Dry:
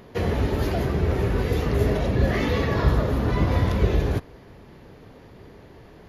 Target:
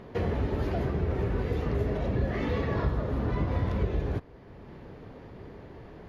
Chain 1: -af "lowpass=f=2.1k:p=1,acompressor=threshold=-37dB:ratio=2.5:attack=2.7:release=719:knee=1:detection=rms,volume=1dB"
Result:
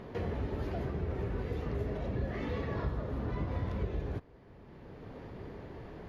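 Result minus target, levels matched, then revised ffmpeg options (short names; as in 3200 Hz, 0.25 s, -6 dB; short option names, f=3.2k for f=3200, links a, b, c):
compressor: peak gain reduction +6.5 dB
-af "lowpass=f=2.1k:p=1,acompressor=threshold=-26dB:ratio=2.5:attack=2.7:release=719:knee=1:detection=rms,volume=1dB"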